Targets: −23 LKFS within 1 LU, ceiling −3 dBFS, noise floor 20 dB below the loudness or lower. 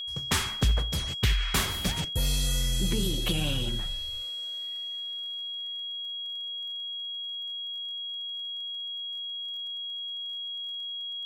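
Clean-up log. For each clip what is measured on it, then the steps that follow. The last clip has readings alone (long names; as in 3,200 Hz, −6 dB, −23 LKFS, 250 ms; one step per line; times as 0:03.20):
crackle rate 31 per second; interfering tone 3,300 Hz; level of the tone −33 dBFS; integrated loudness −30.5 LKFS; sample peak −13.5 dBFS; target loudness −23.0 LKFS
→ click removal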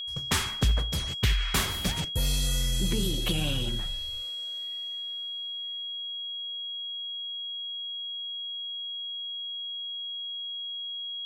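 crackle rate 0.089 per second; interfering tone 3,300 Hz; level of the tone −33 dBFS
→ notch filter 3,300 Hz, Q 30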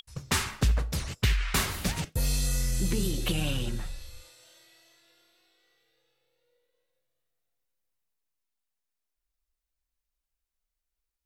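interfering tone none found; integrated loudness −29.5 LKFS; sample peak −13.5 dBFS; target loudness −23.0 LKFS
→ level +6.5 dB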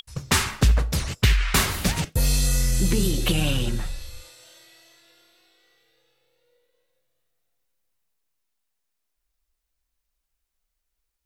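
integrated loudness −23.0 LKFS; sample peak −7.0 dBFS; background noise floor −80 dBFS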